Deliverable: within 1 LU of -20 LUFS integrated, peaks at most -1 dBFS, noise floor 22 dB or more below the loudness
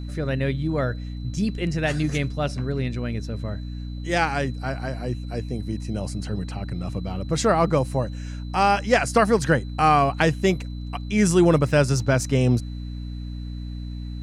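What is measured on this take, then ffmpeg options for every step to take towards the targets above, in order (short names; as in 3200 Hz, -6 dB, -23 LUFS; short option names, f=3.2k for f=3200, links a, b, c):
hum 60 Hz; harmonics up to 300 Hz; hum level -29 dBFS; steady tone 4000 Hz; tone level -51 dBFS; loudness -23.5 LUFS; peak -5.5 dBFS; loudness target -20.0 LUFS
-> -af "bandreject=f=60:t=h:w=6,bandreject=f=120:t=h:w=6,bandreject=f=180:t=h:w=6,bandreject=f=240:t=h:w=6,bandreject=f=300:t=h:w=6"
-af "bandreject=f=4k:w=30"
-af "volume=3.5dB"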